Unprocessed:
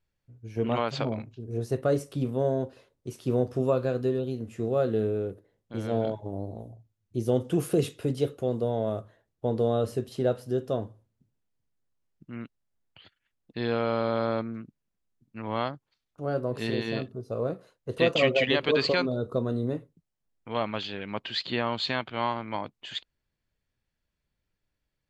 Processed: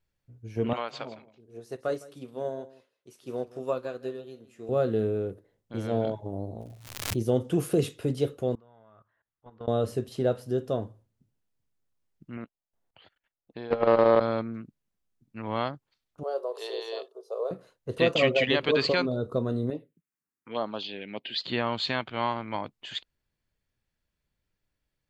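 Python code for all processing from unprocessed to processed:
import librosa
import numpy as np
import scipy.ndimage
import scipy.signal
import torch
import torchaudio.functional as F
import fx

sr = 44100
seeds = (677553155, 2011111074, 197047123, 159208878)

y = fx.chain(x, sr, fx.highpass(hz=580.0, slope=6),
    fx.echo_single(ms=161, db=-14.0),
    fx.upward_expand(threshold_db=-41.0, expansion=1.5), at=(0.73, 4.69))
y = fx.dmg_crackle(y, sr, seeds[0], per_s=190.0, level_db=-47.0, at=(6.6, 7.21), fade=0.02)
y = fx.pre_swell(y, sr, db_per_s=66.0, at=(6.6, 7.21), fade=0.02)
y = fx.chain(y, sr, fx.lowpass(hz=1900.0, slope=12),
    fx.low_shelf_res(hz=790.0, db=-12.5, q=1.5),
    fx.level_steps(step_db=19), at=(8.55, 9.68))
y = fx.chain(y, sr, fx.peak_eq(hz=690.0, db=11.0, octaves=1.9),
    fx.level_steps(step_db=19),
    fx.doppler_dist(depth_ms=0.2), at=(12.37, 14.21))
y = fx.chain(y, sr, fx.ellip_highpass(hz=420.0, order=4, stop_db=50),
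    fx.band_shelf(hz=1900.0, db=-10.5, octaves=1.1), at=(16.23, 17.51))
y = fx.chain(y, sr, fx.highpass(hz=220.0, slope=12),
    fx.env_phaser(low_hz=600.0, high_hz=2400.0, full_db=-26.0), at=(19.7, 21.43))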